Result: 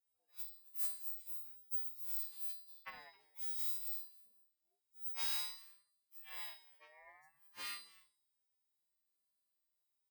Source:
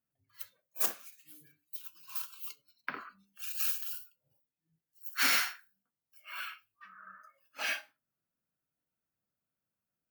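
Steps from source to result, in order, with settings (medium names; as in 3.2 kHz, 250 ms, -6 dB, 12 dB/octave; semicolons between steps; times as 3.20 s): partials quantised in pitch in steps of 2 st; 0.96–2.15 s: treble shelf 9.4 kHz +11 dB; compression 2:1, threshold -38 dBFS, peak gain reduction 14 dB; feedback comb 120 Hz, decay 0.62 s, harmonics all, mix 80%; delay 264 ms -21 dB; ring modulator with a swept carrier 500 Hz, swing 30%, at 0.59 Hz; trim +3.5 dB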